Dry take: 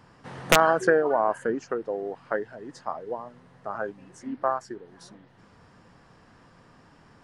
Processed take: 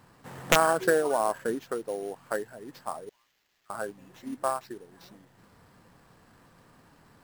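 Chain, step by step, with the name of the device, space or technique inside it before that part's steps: 3.09–3.70 s: inverse Chebyshev high-pass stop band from 390 Hz, stop band 80 dB; early companding sampler (sample-rate reducer 9.5 kHz, jitter 0%; companded quantiser 6-bit); trim -3 dB

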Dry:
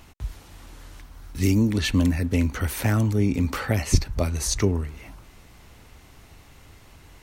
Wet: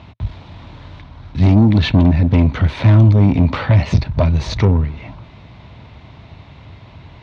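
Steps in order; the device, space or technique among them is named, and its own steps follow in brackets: guitar amplifier (valve stage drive 22 dB, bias 0.55; tone controls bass +13 dB, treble -1 dB; cabinet simulation 100–4400 Hz, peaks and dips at 110 Hz +3 dB, 630 Hz +9 dB, 970 Hz +8 dB, 2.3 kHz +4 dB, 3.7 kHz +7 dB); trim +6.5 dB

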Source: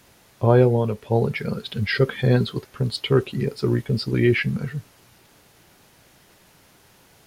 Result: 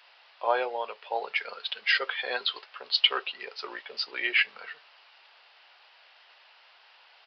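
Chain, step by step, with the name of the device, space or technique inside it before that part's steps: musical greeting card (resampled via 11.025 kHz; high-pass 700 Hz 24 dB/octave; peaking EQ 2.8 kHz +6 dB 0.33 oct); 2.44–3.18 s: dynamic bell 3.4 kHz, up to +5 dB, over -39 dBFS, Q 0.93

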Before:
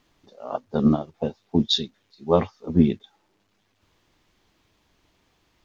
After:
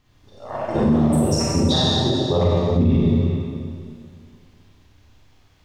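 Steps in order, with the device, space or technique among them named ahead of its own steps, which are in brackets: ever faster or slower copies 185 ms, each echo +7 st, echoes 2, each echo -6 dB; peaking EQ 110 Hz +4.5 dB 1.6 oct; Schroeder reverb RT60 2.2 s, combs from 30 ms, DRR -7.5 dB; dynamic bell 1.3 kHz, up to -5 dB, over -32 dBFS, Q 1.3; car stereo with a boomy subwoofer (resonant low shelf 140 Hz +8 dB, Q 1.5; peak limiter -6.5 dBFS, peak gain reduction 9 dB); trim -2.5 dB

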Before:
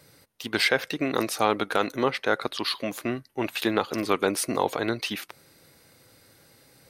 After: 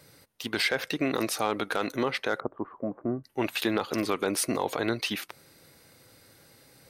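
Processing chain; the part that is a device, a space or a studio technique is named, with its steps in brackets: 2.40–3.24 s: Bessel low-pass 720 Hz, order 6; clipper into limiter (hard clipper -9.5 dBFS, distortion -28 dB; peak limiter -15 dBFS, peak gain reduction 5.5 dB)

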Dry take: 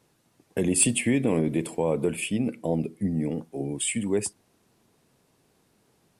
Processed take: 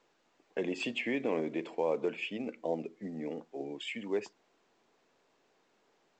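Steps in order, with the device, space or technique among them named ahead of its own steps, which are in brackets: telephone (band-pass 400–3200 Hz; trim -3.5 dB; µ-law 128 kbps 16 kHz)

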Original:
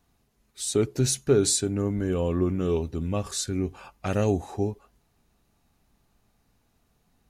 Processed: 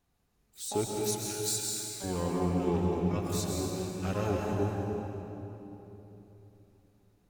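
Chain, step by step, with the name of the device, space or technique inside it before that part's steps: 0.94–2.04 s: steep high-pass 1.5 kHz 48 dB/octave; shimmer-style reverb (harmony voices +12 st -8 dB; reverberation RT60 3.4 s, pre-delay 115 ms, DRR -1.5 dB); trim -8.5 dB

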